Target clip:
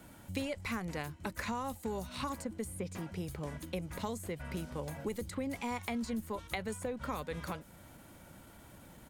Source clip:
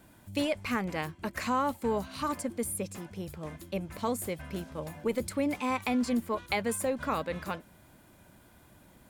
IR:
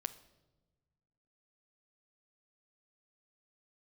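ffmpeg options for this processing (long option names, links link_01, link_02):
-filter_complex "[0:a]acrossover=split=110|4600[link_01][link_02][link_03];[link_01]acompressor=threshold=-48dB:ratio=4[link_04];[link_02]acompressor=threshold=-40dB:ratio=4[link_05];[link_03]acompressor=threshold=-54dB:ratio=4[link_06];[link_04][link_05][link_06]amix=inputs=3:normalize=0,asetrate=41625,aresample=44100,atempo=1.05946,volume=3dB"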